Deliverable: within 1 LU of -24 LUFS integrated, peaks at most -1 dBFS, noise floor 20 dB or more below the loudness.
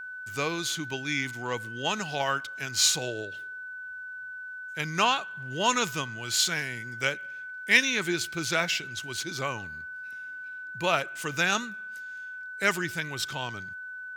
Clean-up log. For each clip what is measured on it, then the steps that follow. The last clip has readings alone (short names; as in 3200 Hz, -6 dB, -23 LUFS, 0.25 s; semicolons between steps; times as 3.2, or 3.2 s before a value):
steady tone 1500 Hz; tone level -37 dBFS; loudness -29.0 LUFS; peak -6.0 dBFS; loudness target -24.0 LUFS
-> notch 1500 Hz, Q 30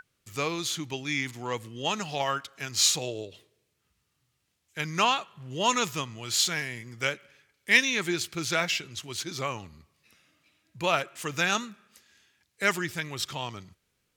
steady tone none; loudness -28.0 LUFS; peak -6.5 dBFS; loudness target -24.0 LUFS
-> gain +4 dB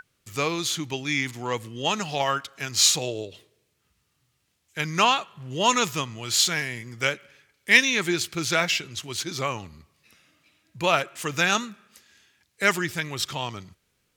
loudness -24.0 LUFS; peak -2.5 dBFS; noise floor -72 dBFS